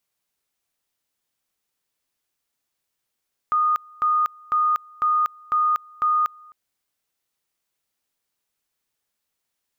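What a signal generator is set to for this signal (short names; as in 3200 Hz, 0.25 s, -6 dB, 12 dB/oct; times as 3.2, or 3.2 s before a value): two-level tone 1230 Hz -16.5 dBFS, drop 27 dB, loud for 0.24 s, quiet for 0.26 s, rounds 6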